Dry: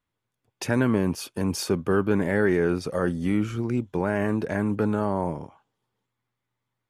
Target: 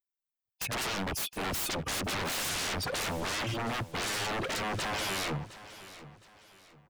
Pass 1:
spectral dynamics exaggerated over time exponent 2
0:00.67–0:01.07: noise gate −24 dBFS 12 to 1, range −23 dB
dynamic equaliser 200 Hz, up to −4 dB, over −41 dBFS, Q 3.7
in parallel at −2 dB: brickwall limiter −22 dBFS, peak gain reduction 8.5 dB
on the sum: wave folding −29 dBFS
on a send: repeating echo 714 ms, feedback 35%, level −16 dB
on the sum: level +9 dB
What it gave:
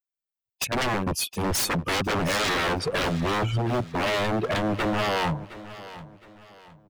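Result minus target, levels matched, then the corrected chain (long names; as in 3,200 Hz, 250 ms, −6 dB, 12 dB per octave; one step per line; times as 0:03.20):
wave folding: distortion −23 dB
spectral dynamics exaggerated over time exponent 2
0:00.67–0:01.07: noise gate −24 dBFS 12 to 1, range −23 dB
dynamic equaliser 200 Hz, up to −4 dB, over −41 dBFS, Q 3.7
in parallel at −2 dB: brickwall limiter −22 dBFS, peak gain reduction 8.5 dB
on the sum: wave folding −37.5 dBFS
on a send: repeating echo 714 ms, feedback 35%, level −16 dB
on the sum: level +9 dB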